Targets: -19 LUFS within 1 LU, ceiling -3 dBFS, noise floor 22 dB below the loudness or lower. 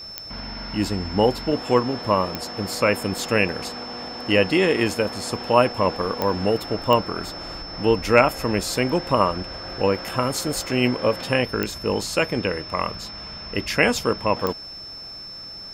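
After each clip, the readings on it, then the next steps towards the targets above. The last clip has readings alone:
clicks 6; steady tone 5300 Hz; tone level -35 dBFS; loudness -22.5 LUFS; peak -1.5 dBFS; loudness target -19.0 LUFS
-> de-click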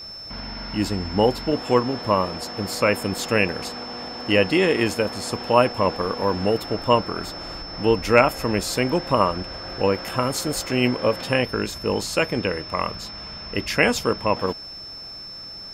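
clicks 0; steady tone 5300 Hz; tone level -35 dBFS
-> notch 5300 Hz, Q 30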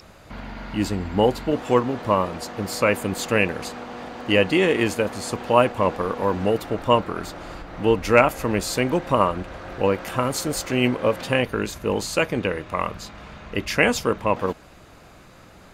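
steady tone none; loudness -22.5 LUFS; peak -1.5 dBFS; loudness target -19.0 LUFS
-> gain +3.5 dB; limiter -3 dBFS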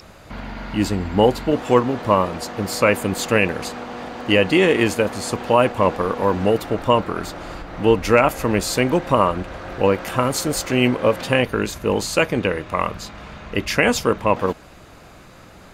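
loudness -19.5 LUFS; peak -3.0 dBFS; noise floor -44 dBFS

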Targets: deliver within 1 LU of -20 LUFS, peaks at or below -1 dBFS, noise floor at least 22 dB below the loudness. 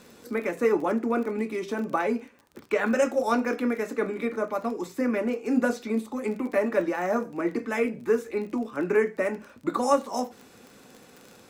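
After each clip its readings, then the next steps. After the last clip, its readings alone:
ticks 30/s; loudness -27.5 LUFS; peak -10.0 dBFS; loudness target -20.0 LUFS
-> de-click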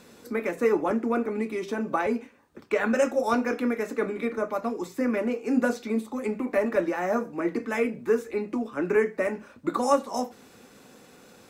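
ticks 0/s; loudness -27.5 LUFS; peak -10.0 dBFS; loudness target -20.0 LUFS
-> gain +7.5 dB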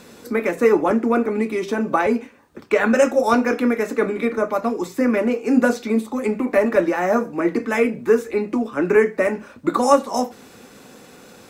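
loudness -20.0 LUFS; peak -2.5 dBFS; noise floor -46 dBFS

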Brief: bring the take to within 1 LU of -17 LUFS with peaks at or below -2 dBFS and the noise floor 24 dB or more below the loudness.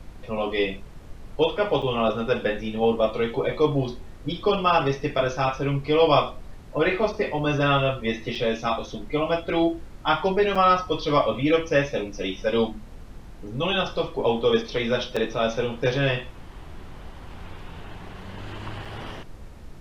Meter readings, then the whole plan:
dropouts 5; longest dropout 5.3 ms; noise floor -43 dBFS; noise floor target -48 dBFS; loudness -24.0 LUFS; peak -6.5 dBFS; loudness target -17.0 LUFS
-> interpolate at 1.82/8.35/10.55/15.16/18.85, 5.3 ms; noise print and reduce 6 dB; gain +7 dB; limiter -2 dBFS

